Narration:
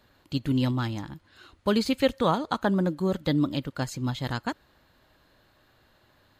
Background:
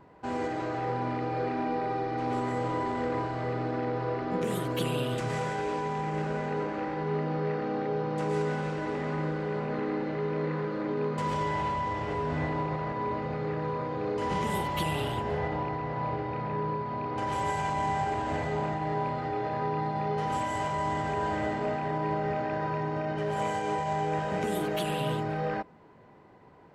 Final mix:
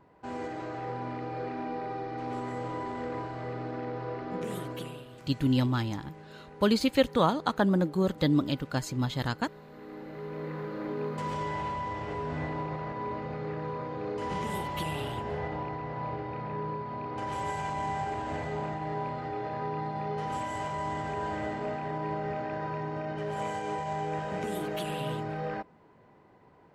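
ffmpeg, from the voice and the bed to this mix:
ffmpeg -i stem1.wav -i stem2.wav -filter_complex "[0:a]adelay=4950,volume=-0.5dB[link_01];[1:a]volume=9.5dB,afade=type=out:start_time=4.6:duration=0.45:silence=0.223872,afade=type=in:start_time=9.72:duration=1.14:silence=0.188365[link_02];[link_01][link_02]amix=inputs=2:normalize=0" out.wav

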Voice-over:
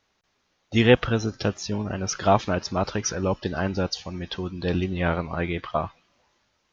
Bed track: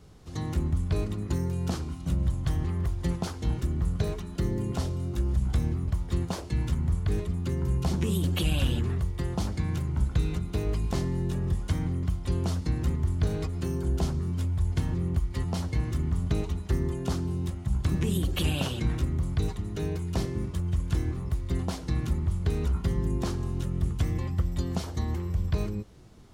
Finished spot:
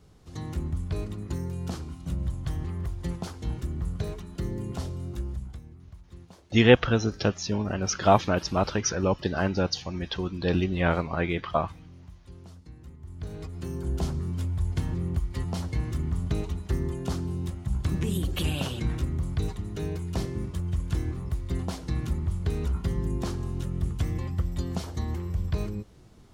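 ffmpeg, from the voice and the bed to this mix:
ffmpeg -i stem1.wav -i stem2.wav -filter_complex "[0:a]adelay=5800,volume=0dB[link_01];[1:a]volume=14.5dB,afade=type=out:start_time=5.11:duration=0.5:silence=0.16788,afade=type=in:start_time=13:duration=1.06:silence=0.125893[link_02];[link_01][link_02]amix=inputs=2:normalize=0" out.wav

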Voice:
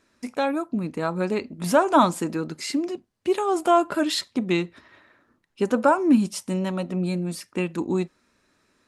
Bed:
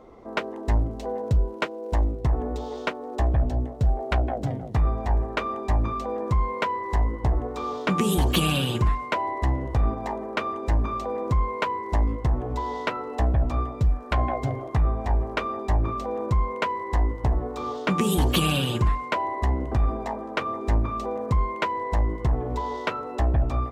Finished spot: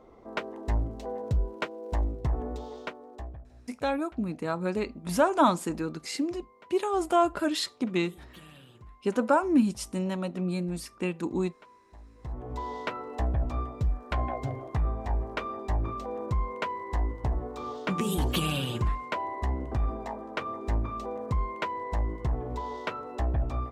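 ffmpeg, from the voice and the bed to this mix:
ffmpeg -i stem1.wav -i stem2.wav -filter_complex "[0:a]adelay=3450,volume=-4.5dB[link_01];[1:a]volume=17dB,afade=type=out:start_time=2.48:duration=0.96:silence=0.0707946,afade=type=in:start_time=12.14:duration=0.48:silence=0.0749894[link_02];[link_01][link_02]amix=inputs=2:normalize=0" out.wav

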